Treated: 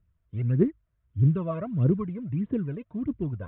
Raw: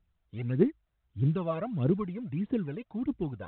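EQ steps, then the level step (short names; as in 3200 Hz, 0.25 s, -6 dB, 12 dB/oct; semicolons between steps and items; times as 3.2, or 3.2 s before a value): Butterworth band-stop 800 Hz, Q 4.4; LPF 2100 Hz 12 dB/oct; bell 98 Hz +9.5 dB 1.4 oct; 0.0 dB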